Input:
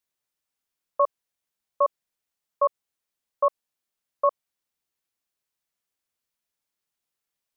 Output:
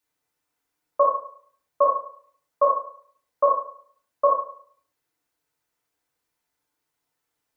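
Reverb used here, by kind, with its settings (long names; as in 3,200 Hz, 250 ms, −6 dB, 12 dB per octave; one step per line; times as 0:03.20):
feedback delay network reverb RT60 0.55 s, low-frequency decay 0.8×, high-frequency decay 0.25×, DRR −6 dB
level +1.5 dB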